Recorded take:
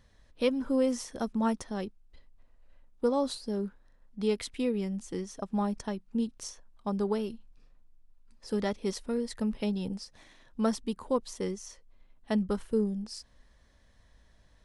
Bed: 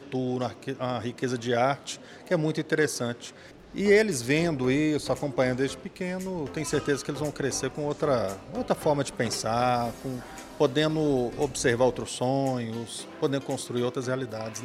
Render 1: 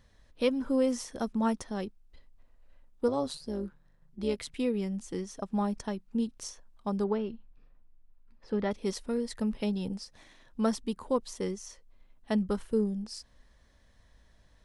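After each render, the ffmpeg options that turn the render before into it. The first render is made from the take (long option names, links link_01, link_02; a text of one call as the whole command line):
ffmpeg -i in.wav -filter_complex "[0:a]asettb=1/sr,asplit=3[link_01][link_02][link_03];[link_01]atrim=end=3.084[link_04];[link_02]atrim=start=3.08:end=4.54,asetpts=PTS-STARTPTS,afade=type=in:duration=0.004:curve=qsin,afade=type=out:start_time=1.456:duration=0.004:curve=qsin,tremolo=f=150:d=0.571[link_05];[link_03]atrim=start=4.536[link_06];[link_04][link_05]acrossfade=duration=0.004:curve1=hsin:curve2=qsin[link_07];[link_07][link_06]acrossfade=duration=0.004:curve1=qsin:curve2=hsin,asettb=1/sr,asplit=3[link_08][link_09][link_10];[link_08]atrim=end=7.044[link_11];[link_09]atrim=start=7.04:end=8.71,asetpts=PTS-STARTPTS,afade=type=in:duration=0.004:curve=qsin,afade=type=out:start_time=1.666:duration=0.004:curve=qsin,lowpass=2700[link_12];[link_10]atrim=start=8.706[link_13];[link_11][link_12]acrossfade=duration=0.004:curve1=hsin:curve2=qsin[link_14];[link_14][link_13]acrossfade=duration=0.004:curve1=qsin:curve2=hsin" out.wav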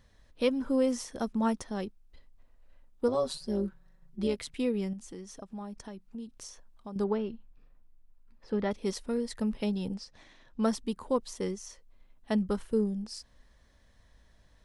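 ffmpeg -i in.wav -filter_complex "[0:a]asettb=1/sr,asplit=3[link_01][link_02][link_03];[link_01]atrim=end=3.144[link_04];[link_02]atrim=start=3.14:end=4.27,asetpts=PTS-STARTPTS,afade=type=in:duration=0.004:curve=qsin,afade=type=out:start_time=1.126:duration=0.004:curve=qsin,aecho=1:1:5.3:0.75,atrim=end_sample=49833[link_05];[link_03]atrim=start=4.266[link_06];[link_04][link_05]acrossfade=duration=0.004:curve1=hsin:curve2=qsin[link_07];[link_07][link_06]acrossfade=duration=0.004:curve1=qsin:curve2=hsin,asettb=1/sr,asplit=3[link_08][link_09][link_10];[link_08]atrim=end=4.934[link_11];[link_09]atrim=start=4.93:end=6.96,asetpts=PTS-STARTPTS,afade=type=in:duration=0.004:curve=qsin,afade=type=out:start_time=2.026:duration=0.004:curve=qsin,acompressor=threshold=-43dB:ratio=2.5:attack=3.2:release=140:knee=1:detection=peak[link_12];[link_10]atrim=start=6.956[link_13];[link_11][link_12]acrossfade=duration=0.004:curve1=hsin:curve2=qsin[link_14];[link_14][link_13]acrossfade=duration=0.004:curve1=qsin:curve2=hsin,asettb=1/sr,asplit=3[link_15][link_16][link_17];[link_15]atrim=end=9.944[link_18];[link_16]atrim=start=9.94:end=10.63,asetpts=PTS-STARTPTS,afade=type=in:duration=0.004:curve=qsin,afade=type=out:start_time=0.686:duration=0.004:curve=qsin,lowpass=6400[link_19];[link_17]atrim=start=10.626[link_20];[link_18][link_19]acrossfade=duration=0.004:curve1=hsin:curve2=qsin[link_21];[link_21][link_20]acrossfade=duration=0.004:curve1=qsin:curve2=hsin" out.wav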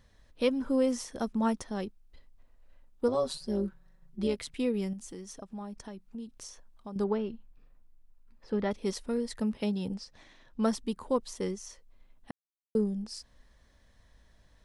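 ffmpeg -i in.wav -filter_complex "[0:a]asettb=1/sr,asplit=3[link_01][link_02][link_03];[link_01]atrim=end=4.744[link_04];[link_02]atrim=start=4.74:end=5.33,asetpts=PTS-STARTPTS,afade=type=in:duration=0.004:curve=qsin,afade=type=out:start_time=0.586:duration=0.004:curve=qsin,highshelf=frequency=7500:gain=7[link_05];[link_03]atrim=start=5.326[link_06];[link_04][link_05]acrossfade=duration=0.004:curve1=hsin:curve2=qsin[link_07];[link_07][link_06]acrossfade=duration=0.004:curve1=qsin:curve2=hsin,asettb=1/sr,asplit=3[link_08][link_09][link_10];[link_08]atrim=end=9.414[link_11];[link_09]atrim=start=9.41:end=9.9,asetpts=PTS-STARTPTS,afade=type=in:duration=0.004:curve=qsin,afade=type=out:start_time=0.486:duration=0.004:curve=qsin,highpass=57[link_12];[link_10]atrim=start=9.896[link_13];[link_11][link_12]acrossfade=duration=0.004:curve1=hsin:curve2=qsin[link_14];[link_14][link_13]acrossfade=duration=0.004:curve1=qsin:curve2=hsin,asplit=3[link_15][link_16][link_17];[link_15]atrim=end=12.31,asetpts=PTS-STARTPTS,afade=type=out:start_time=12.306:duration=0.004:curve=hsin[link_18];[link_16]atrim=start=12.31:end=12.75,asetpts=PTS-STARTPTS,volume=0[link_19];[link_17]atrim=start=12.75,asetpts=PTS-STARTPTS,afade=type=in:duration=0.004:curve=hsin[link_20];[link_18][link_19][link_20]concat=n=3:v=0:a=1" out.wav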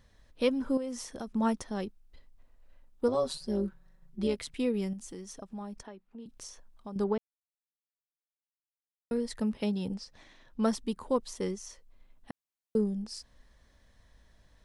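ffmpeg -i in.wav -filter_complex "[0:a]asettb=1/sr,asplit=3[link_01][link_02][link_03];[link_01]atrim=end=0.774[link_04];[link_02]atrim=start=0.77:end=1.32,asetpts=PTS-STARTPTS,afade=type=in:duration=0.004:curve=qsin,afade=type=out:start_time=0.546:duration=0.004:curve=qsin,acompressor=threshold=-36dB:ratio=3:attack=3.2:release=140:knee=1:detection=peak[link_05];[link_03]atrim=start=1.316[link_06];[link_04][link_05]acrossfade=duration=0.004:curve1=hsin:curve2=qsin[link_07];[link_07][link_06]acrossfade=duration=0.004:curve1=qsin:curve2=hsin,asettb=1/sr,asplit=3[link_08][link_09][link_10];[link_08]atrim=end=5.834[link_11];[link_09]atrim=start=5.83:end=6.26,asetpts=PTS-STARTPTS,afade=type=in:duration=0.004:curve=qsin,afade=type=out:start_time=0.426:duration=0.004:curve=qsin,acrossover=split=260 3400:gain=0.224 1 0.178[link_12][link_13][link_14];[link_12][link_13][link_14]amix=inputs=3:normalize=0[link_15];[link_10]atrim=start=6.256[link_16];[link_11][link_15]acrossfade=duration=0.004:curve1=hsin:curve2=qsin[link_17];[link_17][link_16]acrossfade=duration=0.004:curve1=qsin:curve2=hsin,asplit=3[link_18][link_19][link_20];[link_18]atrim=end=7.18,asetpts=PTS-STARTPTS,afade=type=out:start_time=7.176:duration=0.004:curve=hsin[link_21];[link_19]atrim=start=7.18:end=9.11,asetpts=PTS-STARTPTS,volume=0[link_22];[link_20]atrim=start=9.11,asetpts=PTS-STARTPTS,afade=type=in:duration=0.004:curve=hsin[link_23];[link_21][link_22][link_23]concat=n=3:v=0:a=1" out.wav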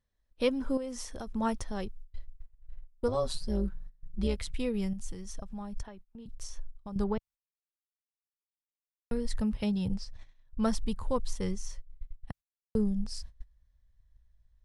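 ffmpeg -i in.wav -af "agate=range=-21dB:threshold=-53dB:ratio=16:detection=peak,asubboost=boost=12:cutoff=86" out.wav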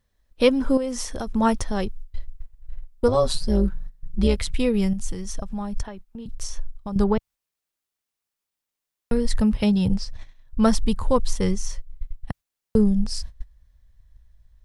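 ffmpeg -i in.wav -af "volume=10.5dB" out.wav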